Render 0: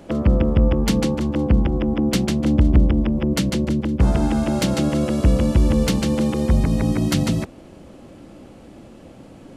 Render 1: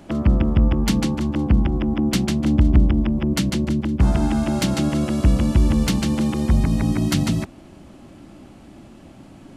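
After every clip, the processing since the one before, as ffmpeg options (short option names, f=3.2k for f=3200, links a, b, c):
-af "equalizer=f=490:w=4.4:g=-12"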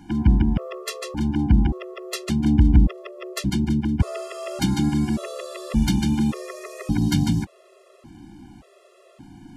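-af "afftfilt=real='re*gt(sin(2*PI*0.87*pts/sr)*(1-2*mod(floor(b*sr/1024/350),2)),0)':imag='im*gt(sin(2*PI*0.87*pts/sr)*(1-2*mod(floor(b*sr/1024/350),2)),0)':win_size=1024:overlap=0.75"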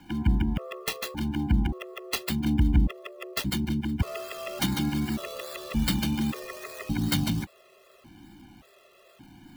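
-filter_complex "[0:a]acrossover=split=330|470|3900[a][b][c][d];[d]acrusher=samples=20:mix=1:aa=0.000001:lfo=1:lforange=12:lforate=2.5[e];[a][b][c][e]amix=inputs=4:normalize=0,crystalizer=i=7:c=0,volume=-7dB"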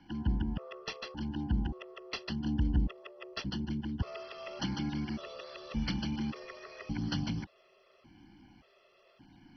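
-af "volume=-7.5dB" -ar 32000 -c:a mp2 -b:a 32k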